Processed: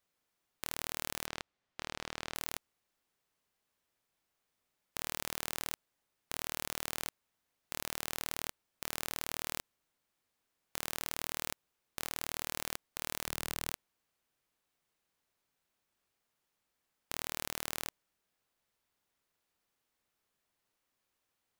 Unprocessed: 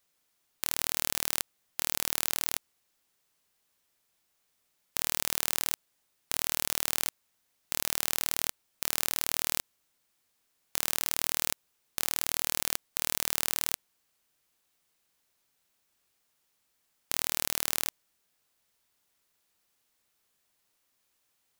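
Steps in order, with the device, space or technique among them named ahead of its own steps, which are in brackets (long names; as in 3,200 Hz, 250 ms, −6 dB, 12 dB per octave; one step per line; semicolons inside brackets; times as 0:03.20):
0:01.26–0:02.35: low-pass filter 5,000 Hz 12 dB per octave
behind a face mask (high-shelf EQ 3,100 Hz −8 dB)
0:13.27–0:13.70: low-shelf EQ 180 Hz +8 dB
level −3 dB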